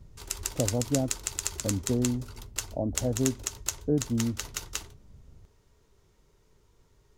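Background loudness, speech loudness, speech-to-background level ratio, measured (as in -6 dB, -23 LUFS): -34.5 LUFS, -31.5 LUFS, 3.0 dB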